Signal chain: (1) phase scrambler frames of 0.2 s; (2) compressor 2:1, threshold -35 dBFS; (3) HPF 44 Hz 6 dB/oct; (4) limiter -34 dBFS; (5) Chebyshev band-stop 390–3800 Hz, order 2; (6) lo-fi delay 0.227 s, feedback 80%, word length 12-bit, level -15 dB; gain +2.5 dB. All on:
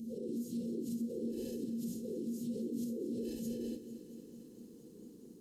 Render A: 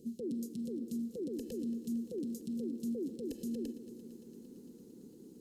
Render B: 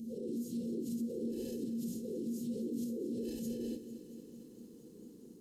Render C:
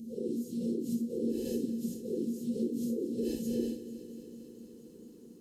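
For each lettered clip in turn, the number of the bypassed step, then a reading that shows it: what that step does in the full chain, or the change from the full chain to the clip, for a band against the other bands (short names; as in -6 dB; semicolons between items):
1, 250 Hz band +2.5 dB; 2, mean gain reduction 3.0 dB; 4, mean gain reduction 3.0 dB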